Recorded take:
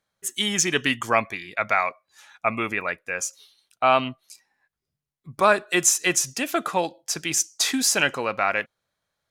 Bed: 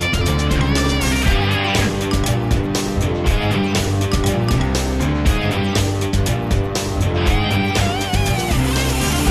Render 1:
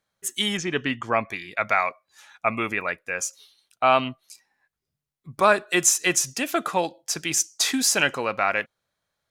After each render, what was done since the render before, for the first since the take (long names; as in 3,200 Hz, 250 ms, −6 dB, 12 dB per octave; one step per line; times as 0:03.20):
0:00.57–0:01.29: head-to-tape spacing loss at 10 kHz 22 dB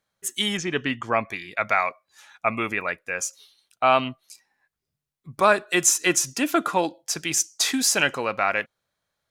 0:05.89–0:06.95: hollow resonant body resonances 300/1,000/1,400 Hz, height 8 dB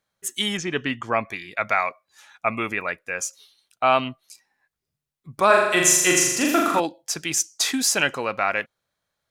0:05.46–0:06.80: flutter between parallel walls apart 7 metres, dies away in 0.95 s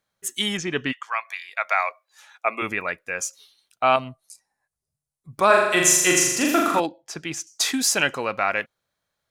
0:00.91–0:02.61: high-pass filter 1,200 Hz → 300 Hz 24 dB per octave
0:03.96–0:05.33: drawn EQ curve 120 Hz 0 dB, 320 Hz −9 dB, 630 Hz −1 dB, 3,100 Hz −14 dB, 4,400 Hz −6 dB, 10,000 Hz +5 dB, 15,000 Hz −10 dB
0:06.86–0:07.47: low-pass filter 2,000 Hz 6 dB per octave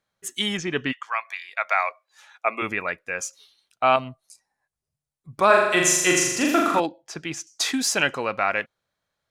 high-shelf EQ 8,800 Hz −9 dB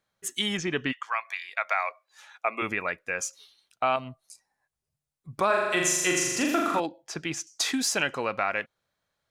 downward compressor 2 to 1, threshold −26 dBFS, peak gain reduction 8.5 dB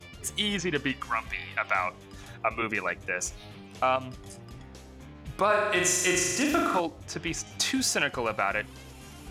mix in bed −28.5 dB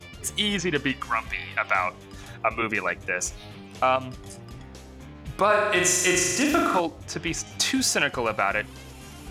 level +3.5 dB